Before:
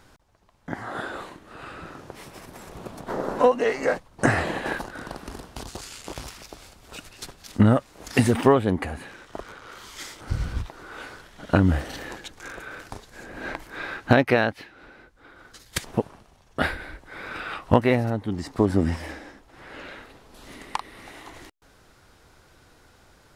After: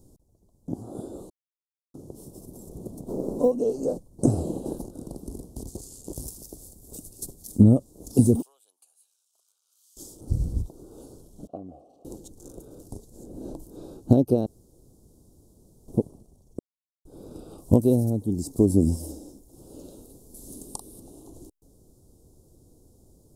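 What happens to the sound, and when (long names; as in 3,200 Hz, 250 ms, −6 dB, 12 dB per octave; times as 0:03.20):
0:01.30–0:01.94: silence
0:02.81–0:03.52: floating-point word with a short mantissa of 6 bits
0:06.13–0:07.64: high-shelf EQ 6,500 Hz +9.5 dB
0:08.42–0:09.97: four-pole ladder high-pass 1,700 Hz, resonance 45%
0:11.47–0:12.05: formant filter a
0:14.46–0:15.88: fill with room tone
0:16.59–0:17.05: silence
0:17.58–0:21.00: high-shelf EQ 4,300 Hz +12 dB
whole clip: Chebyshev band-stop filter 360–9,000 Hz, order 2; level +2.5 dB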